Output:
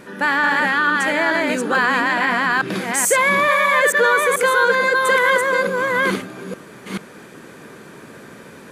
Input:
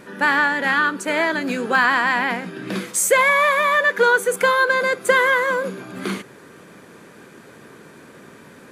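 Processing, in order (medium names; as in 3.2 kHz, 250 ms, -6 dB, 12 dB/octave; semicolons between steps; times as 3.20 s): chunks repeated in reverse 436 ms, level -1.5 dB; in parallel at +2.5 dB: peak limiter -12 dBFS, peak gain reduction 10 dB; on the sum: trim -5.5 dB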